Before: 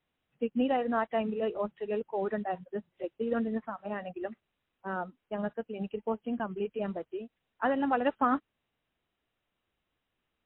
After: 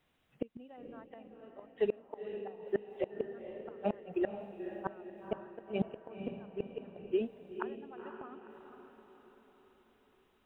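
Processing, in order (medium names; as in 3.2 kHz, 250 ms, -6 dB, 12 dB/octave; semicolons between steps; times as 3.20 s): inverted gate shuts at -27 dBFS, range -32 dB; on a send: echo that smears into a reverb 488 ms, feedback 50%, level -8 dB; on the sum: trim +7 dB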